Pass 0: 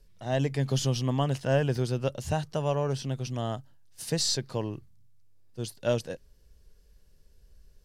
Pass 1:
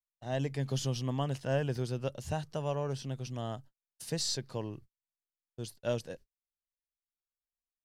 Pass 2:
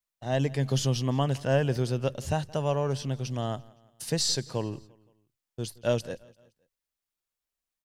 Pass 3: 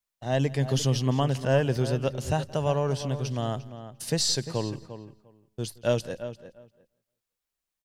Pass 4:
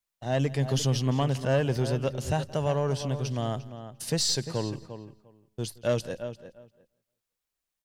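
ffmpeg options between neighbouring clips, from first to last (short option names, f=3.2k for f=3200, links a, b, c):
-af "agate=range=-46dB:threshold=-44dB:ratio=16:detection=peak,volume=-6dB"
-af "aecho=1:1:172|344|516:0.0708|0.0333|0.0156,volume=6.5dB"
-filter_complex "[0:a]asplit=2[a][b];[b]adelay=349,lowpass=f=2.4k:p=1,volume=-11.5dB,asplit=2[c][d];[d]adelay=349,lowpass=f=2.4k:p=1,volume=0.16[e];[a][c][e]amix=inputs=3:normalize=0,volume=1.5dB"
-af "asoftclip=type=tanh:threshold=-16dB"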